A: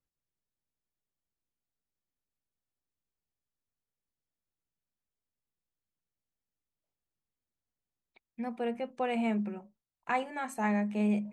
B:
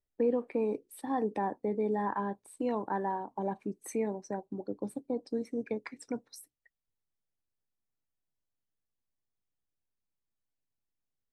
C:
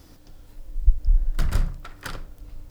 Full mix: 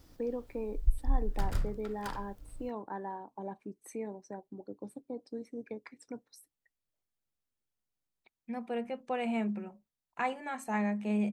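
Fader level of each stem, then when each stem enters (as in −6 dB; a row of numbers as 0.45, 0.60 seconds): −2.0, −7.0, −9.5 decibels; 0.10, 0.00, 0.00 seconds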